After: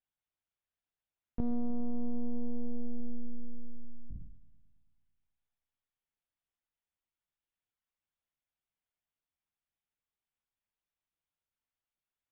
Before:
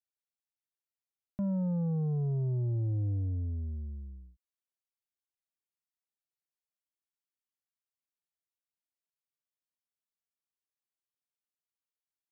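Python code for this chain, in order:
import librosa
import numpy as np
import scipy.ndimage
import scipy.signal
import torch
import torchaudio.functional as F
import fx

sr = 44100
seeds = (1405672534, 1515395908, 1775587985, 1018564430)

p1 = np.r_[np.sort(x[:len(x) // 8 * 8].reshape(-1, 8), axis=1).ravel(), x[len(x) // 8 * 8:]]
p2 = fx.lpc_monotone(p1, sr, seeds[0], pitch_hz=240.0, order=10)
p3 = fx.echo_wet_lowpass(p2, sr, ms=109, feedback_pct=65, hz=450.0, wet_db=-17)
p4 = np.clip(p3, -10.0 ** (-37.0 / 20.0), 10.0 ** (-37.0 / 20.0))
p5 = p3 + (p4 * librosa.db_to_amplitude(-12.0))
y = p5 * librosa.db_to_amplitude(1.5)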